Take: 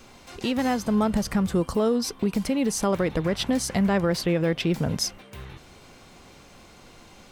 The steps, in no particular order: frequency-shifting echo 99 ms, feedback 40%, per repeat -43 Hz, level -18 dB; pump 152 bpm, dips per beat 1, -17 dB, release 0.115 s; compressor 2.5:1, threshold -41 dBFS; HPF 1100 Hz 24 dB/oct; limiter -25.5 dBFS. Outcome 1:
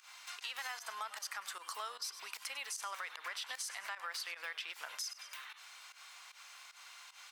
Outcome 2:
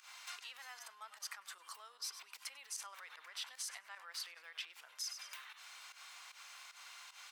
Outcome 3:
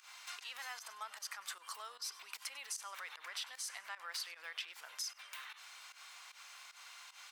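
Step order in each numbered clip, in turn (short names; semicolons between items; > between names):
HPF > frequency-shifting echo > pump > limiter > compressor; pump > frequency-shifting echo > limiter > compressor > HPF; limiter > HPF > compressor > frequency-shifting echo > pump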